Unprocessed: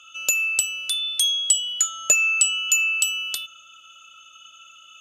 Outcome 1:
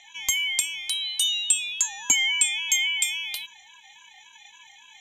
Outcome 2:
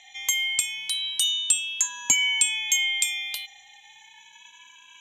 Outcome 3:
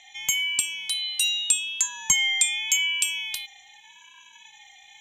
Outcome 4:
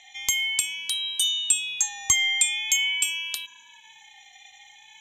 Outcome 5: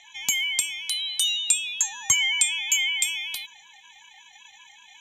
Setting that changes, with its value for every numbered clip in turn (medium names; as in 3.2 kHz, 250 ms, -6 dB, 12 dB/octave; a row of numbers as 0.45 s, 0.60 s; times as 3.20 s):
ring modulator with a swept carrier, at: 3.6 Hz, 0.3 Hz, 0.84 Hz, 0.45 Hz, 5.3 Hz